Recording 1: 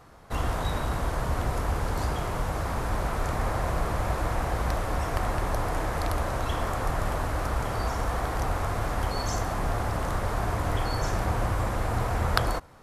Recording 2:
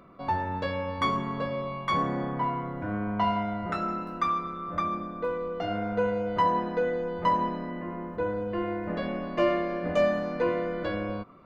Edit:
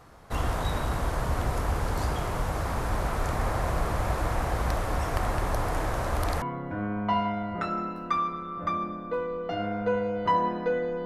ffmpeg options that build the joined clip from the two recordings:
ffmpeg -i cue0.wav -i cue1.wav -filter_complex "[0:a]apad=whole_dur=11.05,atrim=end=11.05,asplit=2[link_01][link_02];[link_01]atrim=end=5.932[link_03];[link_02]atrim=start=5.928:end=6.422,asetpts=PTS-STARTPTS,areverse[link_04];[1:a]atrim=start=2.528:end=7.16[link_05];[link_03][link_04]acrossfade=duration=0.004:curve1=hsin:curve2=hsin[link_06];[link_06][link_05]acrossfade=duration=0.004:curve1=hsin:curve2=hsin" out.wav

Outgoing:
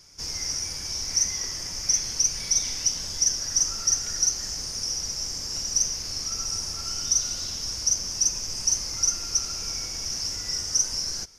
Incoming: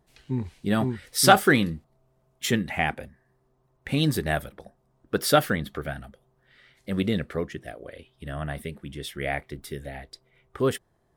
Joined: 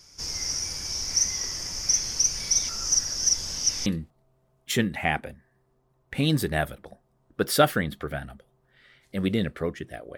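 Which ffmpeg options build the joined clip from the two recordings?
ffmpeg -i cue0.wav -i cue1.wav -filter_complex "[0:a]apad=whole_dur=10.17,atrim=end=10.17,asplit=2[link_01][link_02];[link_01]atrim=end=2.692[link_03];[link_02]atrim=start=2.688:end=3.862,asetpts=PTS-STARTPTS,areverse[link_04];[1:a]atrim=start=1.598:end=7.91[link_05];[link_03][link_04]acrossfade=duration=0.004:curve1=hsin:curve2=hsin[link_06];[link_06][link_05]acrossfade=duration=0.004:curve1=hsin:curve2=hsin" out.wav

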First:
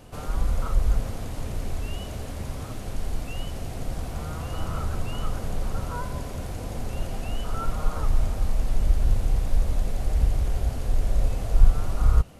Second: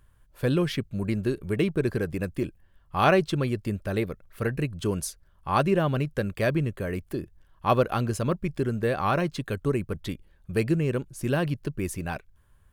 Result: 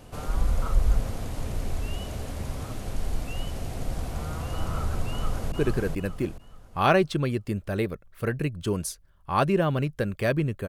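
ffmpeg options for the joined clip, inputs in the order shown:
ffmpeg -i cue0.wav -i cue1.wav -filter_complex "[0:a]apad=whole_dur=10.68,atrim=end=10.68,atrim=end=5.522[link_01];[1:a]atrim=start=1.698:end=6.86[link_02];[link_01][link_02]acrossfade=duration=0.004:curve1=hsin:curve2=hsin,asplit=2[link_03][link_04];[link_04]afade=type=in:start_time=5.1:duration=0.01,afade=type=out:start_time=5.52:duration=0.01,aecho=0:1:430|860|1290|1720|2150:0.707946|0.247781|0.0867234|0.0303532|0.0106236[link_05];[link_03][link_05]amix=inputs=2:normalize=0" out.wav

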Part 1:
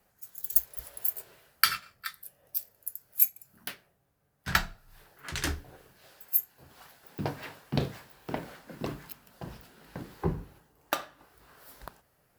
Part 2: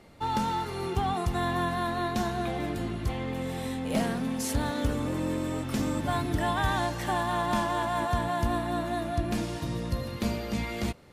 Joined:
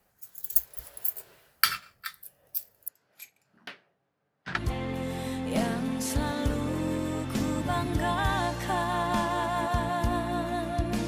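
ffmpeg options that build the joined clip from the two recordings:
ffmpeg -i cue0.wav -i cue1.wav -filter_complex "[0:a]asettb=1/sr,asplit=3[link_01][link_02][link_03];[link_01]atrim=end=2.884[link_04];[link_02]atrim=start=2.88:end=4.6,asetpts=PTS-STARTPTS,afade=type=in:duration=0.004:curve=qsin,afade=type=out:start_time=1.716:duration=0.004:curve=qsin,highpass=180,lowpass=3700[link_05];[link_03]atrim=start=4.596[link_06];[link_04][link_05]acrossfade=duration=0.004:curve1=hsin:curve2=qsin[link_07];[link_07][link_06]acrossfade=duration=0.004:curve1=qsin:curve2=hsin,apad=whole_dur=11.07,atrim=end=11.07,atrim=end=4.6,asetpts=PTS-STARTPTS[link_08];[1:a]atrim=start=2.91:end=9.46,asetpts=PTS-STARTPTS[link_09];[link_08][link_09]acrossfade=duration=0.08:curve1=tri:curve2=tri" out.wav

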